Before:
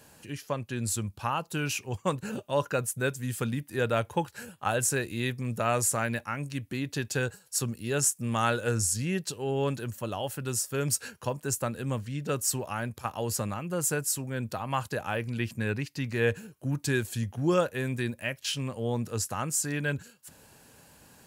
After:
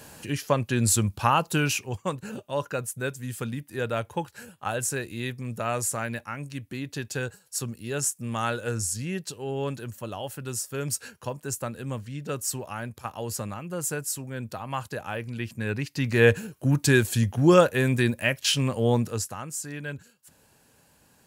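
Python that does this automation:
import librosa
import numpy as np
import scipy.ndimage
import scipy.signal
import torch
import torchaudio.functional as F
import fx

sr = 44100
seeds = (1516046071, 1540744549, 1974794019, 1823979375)

y = fx.gain(x, sr, db=fx.line((1.49, 8.5), (2.12, -1.5), (15.52, -1.5), (16.19, 8.0), (18.94, 8.0), (19.42, -5.0)))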